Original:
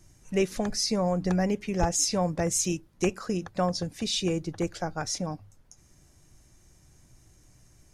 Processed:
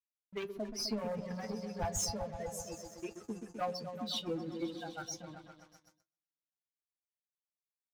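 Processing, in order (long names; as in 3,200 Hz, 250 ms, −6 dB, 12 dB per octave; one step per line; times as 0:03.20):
spectral dynamics exaggerated over time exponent 3
0:02.17–0:03.28: octave-band graphic EQ 125/250/1,000/2,000/4,000/8,000 Hz −6/−12/−10/−3/−12/−10 dB
echo whose low-pass opens from repeat to repeat 128 ms, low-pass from 400 Hz, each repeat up 1 octave, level −6 dB
leveller curve on the samples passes 3
notch comb filter 190 Hz
noise gate with hold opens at −41 dBFS
flanger 1.3 Hz, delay 8.9 ms, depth 1.4 ms, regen +64%
level −8 dB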